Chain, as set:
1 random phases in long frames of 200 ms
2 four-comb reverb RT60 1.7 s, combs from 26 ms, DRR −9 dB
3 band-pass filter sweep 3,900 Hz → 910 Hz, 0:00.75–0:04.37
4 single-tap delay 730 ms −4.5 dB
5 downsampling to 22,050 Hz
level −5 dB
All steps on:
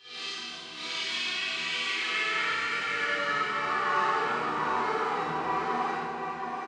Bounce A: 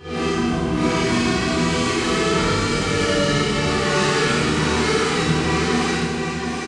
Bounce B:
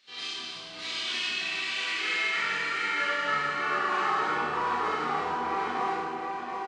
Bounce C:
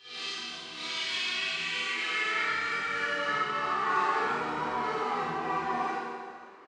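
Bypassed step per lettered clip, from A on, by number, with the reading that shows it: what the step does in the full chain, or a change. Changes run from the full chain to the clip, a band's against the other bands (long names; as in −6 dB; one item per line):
3, 125 Hz band +14.0 dB
1, 125 Hz band −1.5 dB
4, change in integrated loudness −1.0 LU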